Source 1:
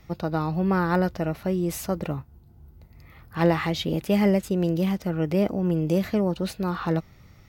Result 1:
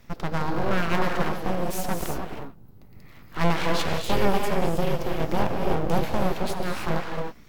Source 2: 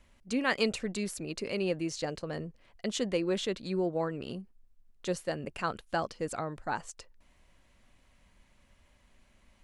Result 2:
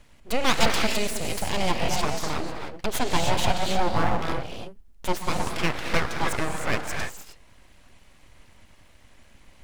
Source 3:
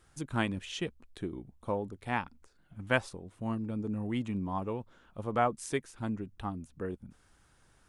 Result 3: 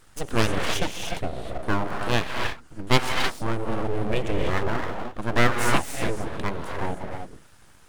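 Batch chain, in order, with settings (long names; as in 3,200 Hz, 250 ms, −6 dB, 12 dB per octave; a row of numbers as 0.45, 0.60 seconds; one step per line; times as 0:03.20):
reverb whose tail is shaped and stops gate 340 ms rising, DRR 2 dB
full-wave rectification
loudness normalisation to −27 LKFS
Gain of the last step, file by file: +1.0, +9.0, +11.0 decibels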